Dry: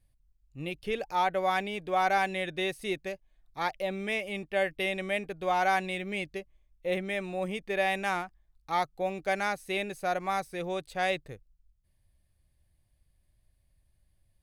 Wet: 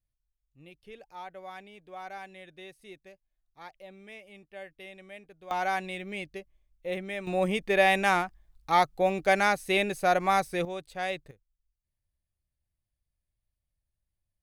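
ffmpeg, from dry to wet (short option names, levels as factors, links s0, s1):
-af "asetnsamples=n=441:p=0,asendcmd='5.51 volume volume -3dB;7.27 volume volume 6dB;10.65 volume volume -3.5dB;11.31 volume volume -15dB',volume=0.168"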